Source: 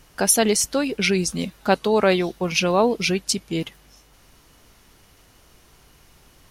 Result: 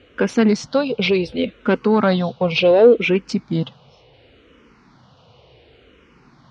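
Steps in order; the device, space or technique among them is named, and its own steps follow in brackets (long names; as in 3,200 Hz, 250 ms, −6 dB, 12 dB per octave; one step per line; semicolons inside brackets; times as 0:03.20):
barber-pole phaser into a guitar amplifier (frequency shifter mixed with the dry sound −0.69 Hz; soft clipping −16.5 dBFS, distortion −14 dB; loudspeaker in its box 79–3,900 Hz, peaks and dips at 130 Hz +6 dB, 240 Hz +4 dB, 490 Hz +8 dB, 1,800 Hz −5 dB)
level +7 dB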